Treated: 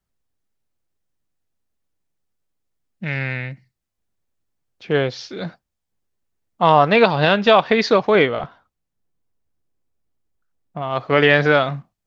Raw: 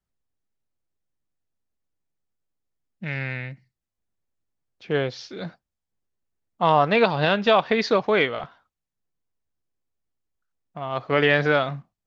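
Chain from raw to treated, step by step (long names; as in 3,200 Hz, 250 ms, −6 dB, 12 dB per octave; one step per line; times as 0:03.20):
0:08.15–0:10.82: tilt shelving filter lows +3.5 dB
level +5 dB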